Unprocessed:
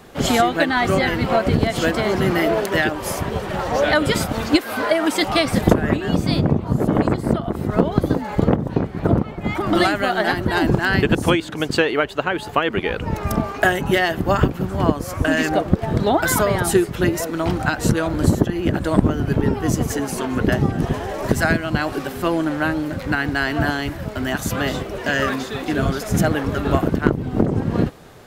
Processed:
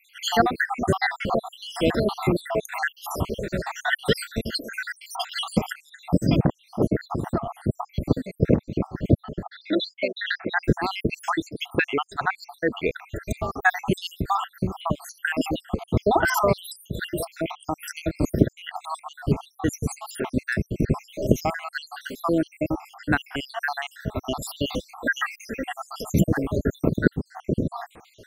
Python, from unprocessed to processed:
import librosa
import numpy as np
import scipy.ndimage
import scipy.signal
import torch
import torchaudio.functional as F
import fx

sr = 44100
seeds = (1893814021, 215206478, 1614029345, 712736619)

y = fx.spec_dropout(x, sr, seeds[0], share_pct=76)
y = fx.cabinet(y, sr, low_hz=340.0, low_slope=12, high_hz=4200.0, hz=(990.0, 2200.0, 3800.0), db=(-8, 7, 5), at=(9.43, 10.64))
y = fx.comb(y, sr, ms=3.7, depth=0.53, at=(24.69, 25.87))